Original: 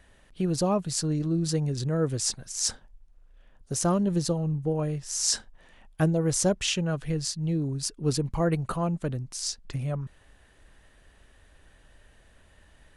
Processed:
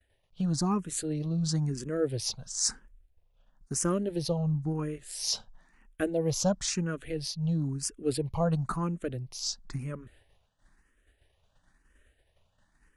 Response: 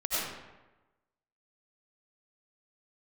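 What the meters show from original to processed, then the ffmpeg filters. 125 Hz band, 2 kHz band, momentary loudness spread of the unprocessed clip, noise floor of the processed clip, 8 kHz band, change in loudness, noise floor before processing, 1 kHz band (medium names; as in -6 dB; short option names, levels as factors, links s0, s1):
-3.5 dB, -4.5 dB, 7 LU, -72 dBFS, -4.0 dB, -3.5 dB, -59 dBFS, -3.5 dB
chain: -filter_complex "[0:a]agate=range=0.0224:threshold=0.00398:ratio=3:detection=peak,asplit=2[s0][s1];[s1]afreqshift=0.99[s2];[s0][s2]amix=inputs=2:normalize=1"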